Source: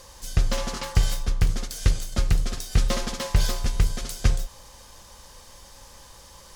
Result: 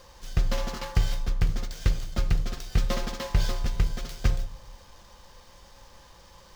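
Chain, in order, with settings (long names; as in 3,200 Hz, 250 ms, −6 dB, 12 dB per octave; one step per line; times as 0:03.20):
running median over 5 samples
on a send: convolution reverb RT60 0.80 s, pre-delay 6 ms, DRR 16.5 dB
on the sum: level −3 dB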